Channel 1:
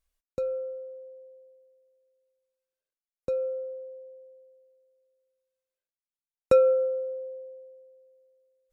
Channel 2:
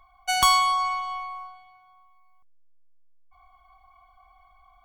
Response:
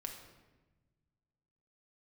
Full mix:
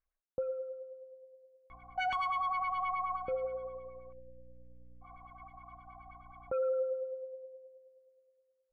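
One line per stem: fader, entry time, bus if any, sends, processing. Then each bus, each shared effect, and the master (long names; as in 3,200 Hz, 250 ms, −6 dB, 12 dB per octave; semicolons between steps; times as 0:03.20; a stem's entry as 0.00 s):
−3.0 dB, 0.00 s, no send, transistor ladder low-pass 2,300 Hz, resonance 25%
+0.5 dB, 1.70 s, no send, hum removal 93.87 Hz, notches 9; downward compressor 2.5 to 1, threshold −34 dBFS, peak gain reduction 12.5 dB; mains hum 60 Hz, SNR 21 dB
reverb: not used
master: auto-filter low-pass sine 9.5 Hz 700–2,500 Hz; brickwall limiter −27 dBFS, peak gain reduction 10.5 dB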